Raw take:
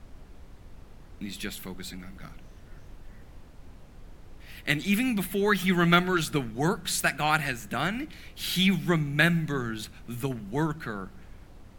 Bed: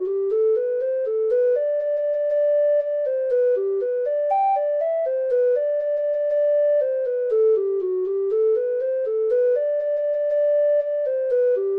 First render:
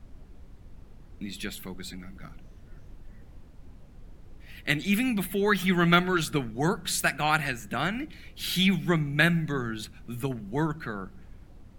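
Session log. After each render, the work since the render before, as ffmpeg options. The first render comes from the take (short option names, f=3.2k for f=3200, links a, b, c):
-af "afftdn=nr=6:nf=-50"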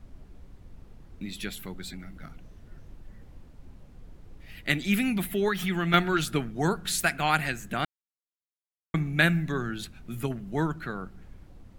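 -filter_complex "[0:a]asettb=1/sr,asplit=3[a][b][c];[a]atrim=end=5.484[d];[b]atrim=start=5.48:end=5.94,asetpts=PTS-STARTPTS,afade=t=in:d=0.004:c=qsin,afade=t=out:st=0.456:d=0.004:c=qsin,acompressor=threshold=-27dB:ratio=2:attack=3.2:release=140:knee=1:detection=peak[e];[c]atrim=start=5.936[f];[d][e]acrossfade=d=0.004:c1=hsin:c2=qsin[g];[g][f]acrossfade=d=0.004:c1=qsin:c2=hsin,asplit=3[h][i][j];[h]atrim=end=7.85,asetpts=PTS-STARTPTS,afade=t=out:st=7.846:d=0.004:c=hsin[k];[i]atrim=start=7.85:end=8.94,asetpts=PTS-STARTPTS,volume=0[l];[j]atrim=start=8.94,asetpts=PTS-STARTPTS,afade=t=in:d=0.004:c=hsin[m];[k][l][m]concat=n=3:v=0:a=1"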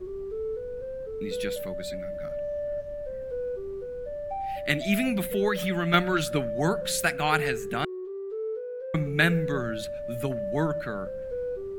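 -filter_complex "[1:a]volume=-13dB[a];[0:a][a]amix=inputs=2:normalize=0"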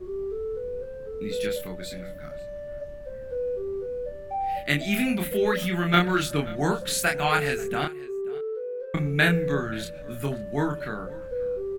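-filter_complex "[0:a]asplit=2[a][b];[b]adelay=28,volume=-3dB[c];[a][c]amix=inputs=2:normalize=0,aecho=1:1:533:0.0891"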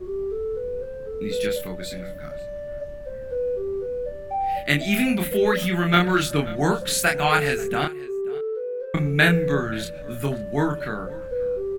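-af "volume=3.5dB,alimiter=limit=-3dB:level=0:latency=1"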